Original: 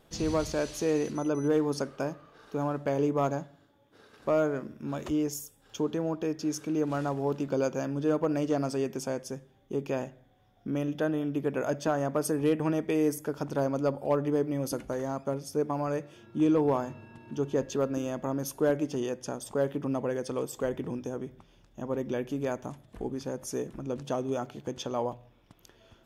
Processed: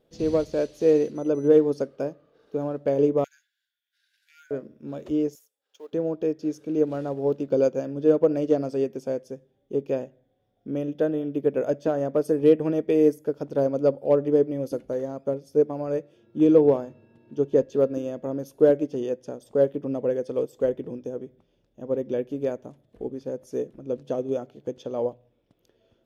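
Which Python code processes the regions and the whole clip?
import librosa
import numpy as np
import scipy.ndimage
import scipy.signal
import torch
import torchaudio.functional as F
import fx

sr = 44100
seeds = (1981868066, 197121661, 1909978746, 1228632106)

y = fx.chain(x, sr, fx.brickwall_highpass(low_hz=1400.0),
    fx.high_shelf(hz=5300.0, db=7.5), at=(3.24, 4.51))
y = fx.chain(y, sr, fx.law_mismatch(coded='A'),
    fx.highpass(hz=840.0, slope=12), at=(5.35, 5.93))
y = fx.graphic_eq_10(y, sr, hz=(125, 250, 500, 1000, 4000, 8000), db=(3, 4, 12, -5, 3, -4))
y = fx.upward_expand(y, sr, threshold_db=-36.0, expansion=1.5)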